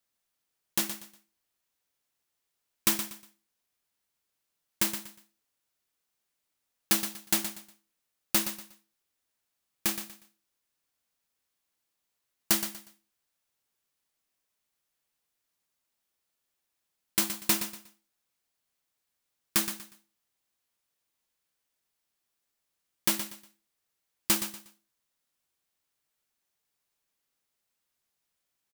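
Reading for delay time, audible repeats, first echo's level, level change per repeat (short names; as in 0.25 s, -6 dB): 0.12 s, 3, -10.0 dB, -11.5 dB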